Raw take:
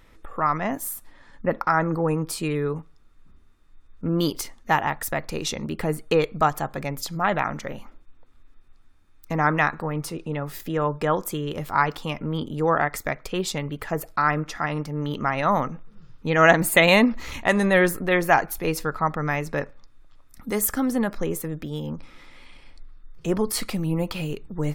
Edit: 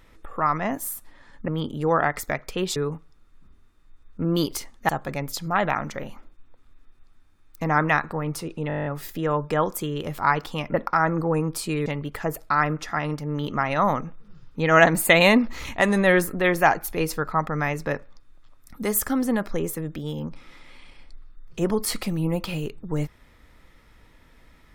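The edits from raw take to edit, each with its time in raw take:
0:01.48–0:02.60: swap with 0:12.25–0:13.53
0:04.73–0:06.58: remove
0:10.37: stutter 0.02 s, 10 plays

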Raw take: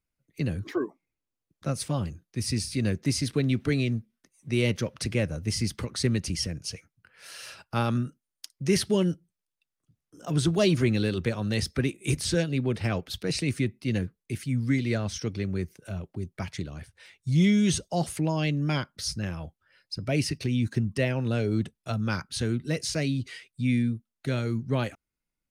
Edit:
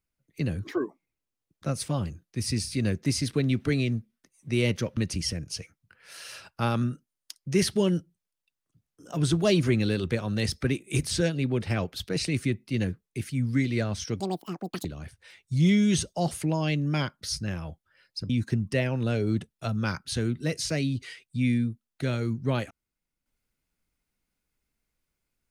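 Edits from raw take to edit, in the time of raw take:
0:04.97–0:06.11: remove
0:15.34–0:16.60: play speed 195%
0:20.05–0:20.54: remove

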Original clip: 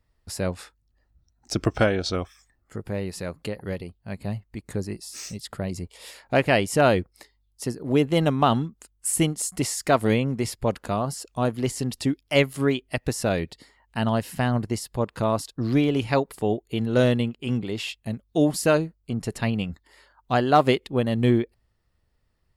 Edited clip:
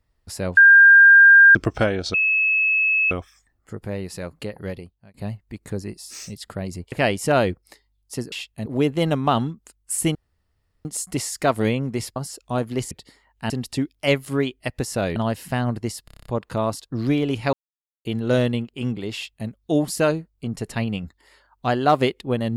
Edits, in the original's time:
0:00.57–0:01.55: beep over 1,600 Hz −6.5 dBFS
0:02.14: insert tone 2,590 Hz −16 dBFS 0.97 s
0:03.79–0:04.17: fade out
0:05.95–0:06.41: remove
0:09.30: splice in room tone 0.70 s
0:10.61–0:11.03: remove
0:13.44–0:14.03: move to 0:11.78
0:14.92: stutter 0.03 s, 8 plays
0:16.19–0:16.71: silence
0:17.80–0:18.14: duplicate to 0:07.81

